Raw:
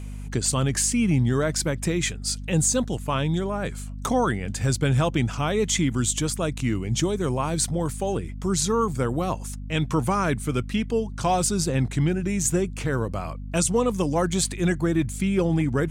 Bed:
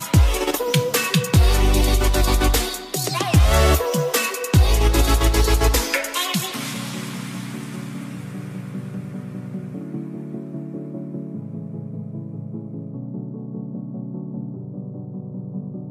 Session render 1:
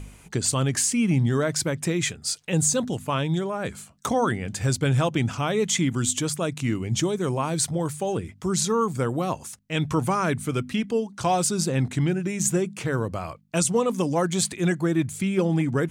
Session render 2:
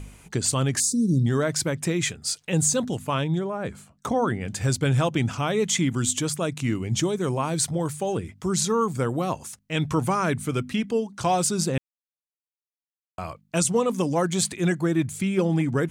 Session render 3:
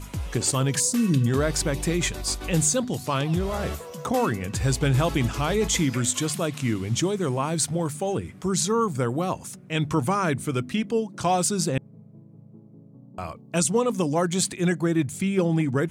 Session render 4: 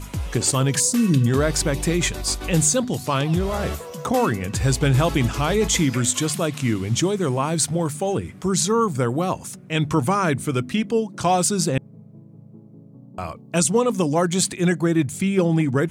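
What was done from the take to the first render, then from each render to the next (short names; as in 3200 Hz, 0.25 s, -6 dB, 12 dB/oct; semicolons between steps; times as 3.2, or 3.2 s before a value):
de-hum 50 Hz, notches 5
0.8–1.26 brick-wall FIR band-stop 590–3500 Hz; 3.24–4.41 high shelf 2100 Hz -8.5 dB; 11.78–13.18 mute
add bed -17 dB
gain +3.5 dB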